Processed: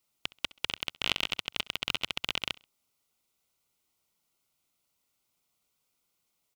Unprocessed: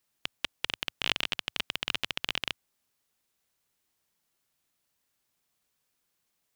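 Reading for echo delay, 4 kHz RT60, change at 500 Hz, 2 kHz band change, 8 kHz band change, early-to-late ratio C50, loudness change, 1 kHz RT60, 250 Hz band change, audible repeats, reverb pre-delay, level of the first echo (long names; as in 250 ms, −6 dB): 66 ms, no reverb audible, 0.0 dB, −1.0 dB, 0.0 dB, no reverb audible, 0.0 dB, no reverb audible, 0.0 dB, 2, no reverb audible, −22.5 dB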